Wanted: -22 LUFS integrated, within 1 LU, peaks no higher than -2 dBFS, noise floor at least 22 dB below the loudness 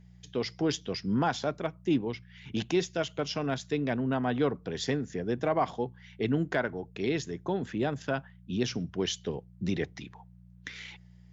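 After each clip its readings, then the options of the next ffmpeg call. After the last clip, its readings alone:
hum 60 Hz; harmonics up to 180 Hz; hum level -52 dBFS; loudness -31.5 LUFS; peak -15.0 dBFS; loudness target -22.0 LUFS
-> -af "bandreject=f=60:t=h:w=4,bandreject=f=120:t=h:w=4,bandreject=f=180:t=h:w=4"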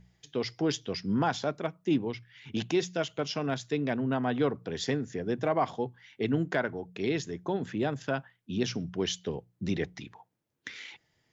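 hum none; loudness -32.0 LUFS; peak -14.5 dBFS; loudness target -22.0 LUFS
-> -af "volume=10dB"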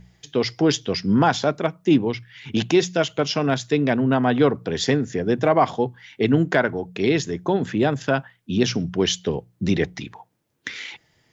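loudness -22.0 LUFS; peak -4.5 dBFS; noise floor -65 dBFS

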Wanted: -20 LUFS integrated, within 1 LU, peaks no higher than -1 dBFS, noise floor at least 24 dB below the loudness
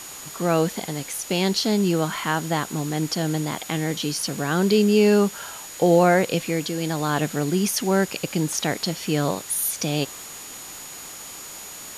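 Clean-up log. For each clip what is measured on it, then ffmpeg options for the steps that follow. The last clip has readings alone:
steady tone 6800 Hz; tone level -40 dBFS; noise floor -38 dBFS; noise floor target -47 dBFS; loudness -22.5 LUFS; peak -7.0 dBFS; loudness target -20.0 LUFS
-> -af "bandreject=f=6.8k:w=30"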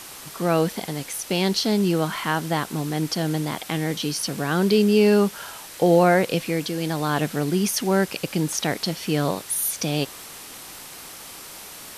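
steady tone none; noise floor -40 dBFS; noise floor target -47 dBFS
-> -af "afftdn=nr=7:nf=-40"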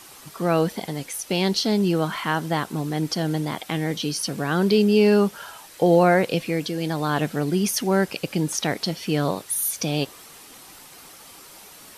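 noise floor -46 dBFS; noise floor target -47 dBFS
-> -af "afftdn=nr=6:nf=-46"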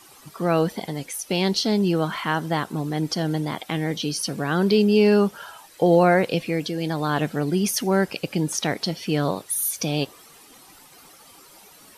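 noise floor -50 dBFS; loudness -23.0 LUFS; peak -7.5 dBFS; loudness target -20.0 LUFS
-> -af "volume=3dB"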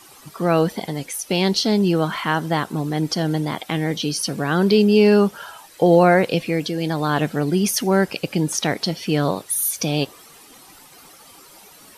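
loudness -20.0 LUFS; peak -4.5 dBFS; noise floor -47 dBFS

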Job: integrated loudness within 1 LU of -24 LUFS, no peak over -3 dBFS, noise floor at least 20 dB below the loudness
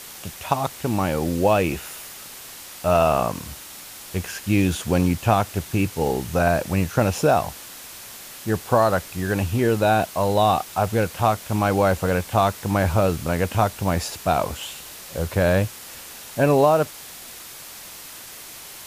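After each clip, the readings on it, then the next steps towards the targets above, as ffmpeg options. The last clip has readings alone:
noise floor -40 dBFS; noise floor target -42 dBFS; loudness -22.0 LUFS; peak -4.5 dBFS; loudness target -24.0 LUFS
-> -af "afftdn=nr=6:nf=-40"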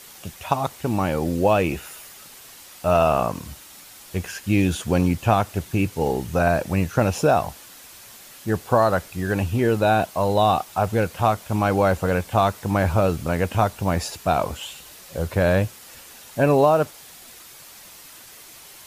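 noise floor -45 dBFS; loudness -22.0 LUFS; peak -4.5 dBFS; loudness target -24.0 LUFS
-> -af "volume=-2dB"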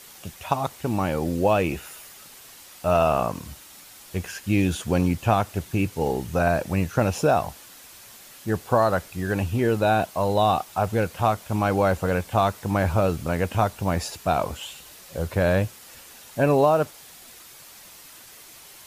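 loudness -24.0 LUFS; peak -6.5 dBFS; noise floor -47 dBFS

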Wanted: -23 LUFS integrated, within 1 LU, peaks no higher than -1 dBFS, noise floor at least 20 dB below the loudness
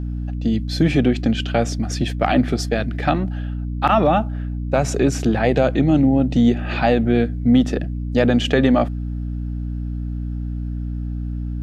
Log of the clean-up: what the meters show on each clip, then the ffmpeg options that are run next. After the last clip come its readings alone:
hum 60 Hz; harmonics up to 300 Hz; hum level -23 dBFS; loudness -20.0 LUFS; peak -3.0 dBFS; loudness target -23.0 LUFS
-> -af "bandreject=f=60:t=h:w=4,bandreject=f=120:t=h:w=4,bandreject=f=180:t=h:w=4,bandreject=f=240:t=h:w=4,bandreject=f=300:t=h:w=4"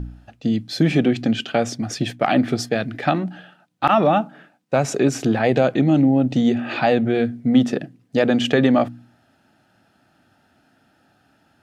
hum none; loudness -19.5 LUFS; peak -2.0 dBFS; loudness target -23.0 LUFS
-> -af "volume=-3.5dB"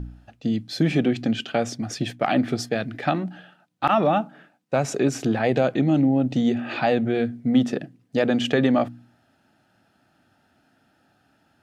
loudness -23.0 LUFS; peak -5.5 dBFS; noise floor -65 dBFS

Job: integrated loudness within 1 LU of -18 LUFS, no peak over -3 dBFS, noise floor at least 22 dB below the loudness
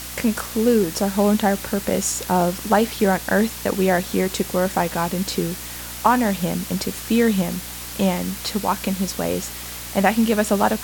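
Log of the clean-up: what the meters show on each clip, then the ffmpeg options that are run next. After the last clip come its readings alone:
hum 60 Hz; harmonics up to 300 Hz; hum level -39 dBFS; noise floor -33 dBFS; noise floor target -43 dBFS; loudness -21.0 LUFS; peak -2.5 dBFS; loudness target -18.0 LUFS
-> -af "bandreject=f=60:t=h:w=4,bandreject=f=120:t=h:w=4,bandreject=f=180:t=h:w=4,bandreject=f=240:t=h:w=4,bandreject=f=300:t=h:w=4"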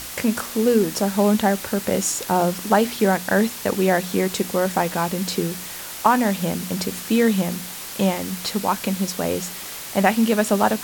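hum none; noise floor -34 dBFS; noise floor target -44 dBFS
-> -af "afftdn=nr=10:nf=-34"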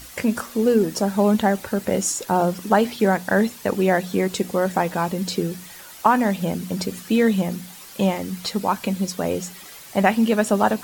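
noise floor -42 dBFS; noise floor target -44 dBFS
-> -af "afftdn=nr=6:nf=-42"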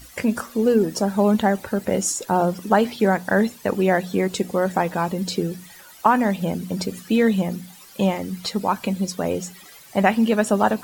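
noise floor -46 dBFS; loudness -21.5 LUFS; peak -3.0 dBFS; loudness target -18.0 LUFS
-> -af "volume=3.5dB,alimiter=limit=-3dB:level=0:latency=1"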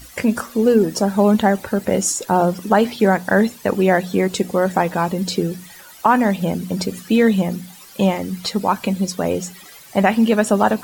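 loudness -18.5 LUFS; peak -3.0 dBFS; noise floor -42 dBFS

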